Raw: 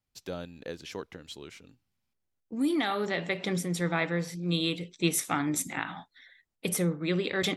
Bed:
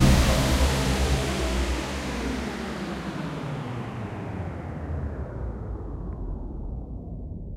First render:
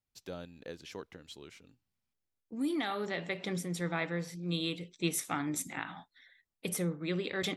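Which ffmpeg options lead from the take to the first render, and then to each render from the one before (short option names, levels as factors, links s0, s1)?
-af "volume=0.531"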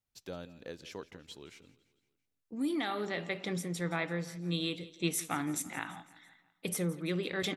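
-af "aecho=1:1:168|336|504|672:0.119|0.0618|0.0321|0.0167"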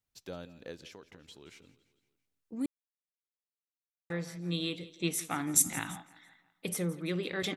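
-filter_complex "[0:a]asettb=1/sr,asplit=3[s0][s1][s2];[s0]atrim=end=0.874[s3];[s1]atrim=start=0.87:end=1.46,asetpts=PTS-STARTPTS,afade=t=in:d=0.004:c=qsin,afade=t=out:st=0.586:d=0.004:c=qsin,acompressor=threshold=0.00355:ratio=2.5:attack=3.2:release=140:knee=1:detection=peak[s4];[s2]atrim=start=1.456[s5];[s3][s4]acrossfade=d=0.004:c1=hsin:c2=qsin[s6];[s6][s5]acrossfade=d=0.004:c1=qsin:c2=hsin,asplit=3[s7][s8][s9];[s7]afade=t=out:st=5.54:d=0.02[s10];[s8]bass=f=250:g=10,treble=f=4000:g=14,afade=t=in:st=5.54:d=0.02,afade=t=out:st=5.96:d=0.02[s11];[s9]afade=t=in:st=5.96:d=0.02[s12];[s10][s11][s12]amix=inputs=3:normalize=0,asplit=3[s13][s14][s15];[s13]atrim=end=2.66,asetpts=PTS-STARTPTS,afade=t=out:st=2.656:d=0.004:c=hsin[s16];[s14]atrim=start=2.66:end=4.1,asetpts=PTS-STARTPTS,volume=0[s17];[s15]atrim=start=4.1,asetpts=PTS-STARTPTS,afade=t=in:d=0.004:c=hsin[s18];[s16][s17][s18]concat=n=3:v=0:a=1"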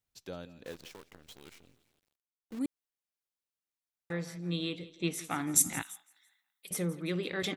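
-filter_complex "[0:a]asettb=1/sr,asplit=3[s0][s1][s2];[s0]atrim=end=0.644[s3];[s1]atrim=start=0.64:end=2.59,asetpts=PTS-STARTPTS,afade=t=in:d=0.004:c=qsin,afade=t=out:st=1.946:d=0.004:c=qsin,acrusher=bits=9:dc=4:mix=0:aa=0.000001[s4];[s2]atrim=start=2.586[s5];[s3][s4]acrossfade=d=0.004:c1=hsin:c2=qsin[s6];[s6][s5]acrossfade=d=0.004:c1=qsin:c2=hsin,asettb=1/sr,asplit=3[s7][s8][s9];[s7]atrim=end=4.414[s10];[s8]atrim=start=4.41:end=5.24,asetpts=PTS-STARTPTS,afade=t=in:d=0.004:c=qsin,afade=t=out:st=0.826:d=0.004:c=qsin,highshelf=f=6300:g=-9[s11];[s9]atrim=start=5.236[s12];[s10][s11]acrossfade=d=0.004:c1=hsin:c2=qsin[s13];[s13][s12]acrossfade=d=0.004:c1=qsin:c2=hsin,asettb=1/sr,asplit=3[s14][s15][s16];[s14]atrim=end=5.824[s17];[s15]atrim=start=5.82:end=6.71,asetpts=PTS-STARTPTS,afade=t=in:d=0.004:c=qsin,afade=t=out:st=0.886:d=0.004:c=qsin,aderivative[s18];[s16]atrim=start=6.706[s19];[s17][s18]acrossfade=d=0.004:c1=hsin:c2=qsin[s20];[s20][s19]acrossfade=d=0.004:c1=qsin:c2=hsin"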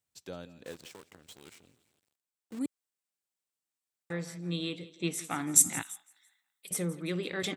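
-af "highpass=74,equalizer=f=8000:t=o:w=0.35:g=7"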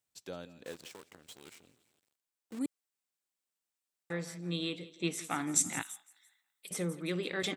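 -filter_complex "[0:a]acrossover=split=7100[s0][s1];[s1]acompressor=threshold=0.00708:ratio=4:attack=1:release=60[s2];[s0][s2]amix=inputs=2:normalize=0,equalizer=f=71:t=o:w=2.6:g=-5"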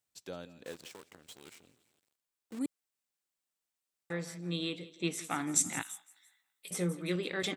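-filter_complex "[0:a]asettb=1/sr,asplit=3[s0][s1][s2];[s0]atrim=end=5.834[s3];[s1]atrim=start=5.83:end=7.16,asetpts=PTS-STARTPTS,afade=t=in:d=0.004:c=qsin,afade=t=out:st=1.326:d=0.004:c=qsin,asplit=2[s4][s5];[s5]adelay=17,volume=0.473[s6];[s4][s6]amix=inputs=2:normalize=0,atrim=end_sample=58653[s7];[s2]atrim=start=7.156[s8];[s3][s7]acrossfade=d=0.004:c1=hsin:c2=qsin[s9];[s9][s8]acrossfade=d=0.004:c1=qsin:c2=hsin"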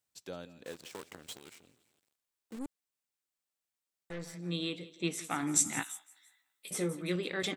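-filter_complex "[0:a]asplit=3[s0][s1][s2];[s0]afade=t=out:st=0.92:d=0.02[s3];[s1]acontrast=64,afade=t=in:st=0.92:d=0.02,afade=t=out:st=1.37:d=0.02[s4];[s2]afade=t=in:st=1.37:d=0.02[s5];[s3][s4][s5]amix=inputs=3:normalize=0,asettb=1/sr,asplit=3[s6][s7][s8];[s6]atrim=end=2.564[s9];[s7]atrim=start=2.56:end=4.34,asetpts=PTS-STARTPTS,afade=t=in:d=0.004:c=qsin,afade=t=out:st=1.776:d=0.004:c=qsin,aeval=exprs='(tanh(63.1*val(0)+0.55)-tanh(0.55))/63.1':c=same[s10];[s8]atrim=start=4.336[s11];[s9][s10]acrossfade=d=0.004:c1=hsin:c2=qsin[s12];[s12][s11]acrossfade=d=0.004:c1=qsin:c2=hsin,asettb=1/sr,asplit=3[s13][s14][s15];[s13]atrim=end=5.414[s16];[s14]atrim=start=5.41:end=7.02,asetpts=PTS-STARTPTS,afade=t=in:d=0.004:c=qsin,afade=t=out:st=1.606:d=0.004:c=qsin,asplit=2[s17][s18];[s18]adelay=14,volume=0.531[s19];[s17][s19]amix=inputs=2:normalize=0,atrim=end_sample=71001[s20];[s15]atrim=start=7.016[s21];[s16][s20]acrossfade=d=0.004:c1=hsin:c2=qsin[s22];[s22][s21]acrossfade=d=0.004:c1=qsin:c2=hsin"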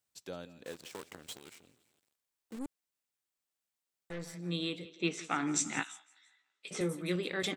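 -filter_complex "[0:a]asettb=1/sr,asplit=3[s0][s1][s2];[s0]atrim=end=4.854[s3];[s1]atrim=start=4.85:end=6.81,asetpts=PTS-STARTPTS,afade=t=in:d=0.004:c=qsin,afade=t=out:st=1.956:d=0.004:c=qsin,highpass=130,equalizer=f=410:t=q:w=4:g=4,equalizer=f=1400:t=q:w=4:g=4,equalizer=f=2600:t=q:w=4:g=4,lowpass=f=6700:w=0.5412,lowpass=f=6700:w=1.3066[s4];[s2]atrim=start=6.806[s5];[s3][s4]acrossfade=d=0.004:c1=hsin:c2=qsin[s6];[s6][s5]acrossfade=d=0.004:c1=qsin:c2=hsin"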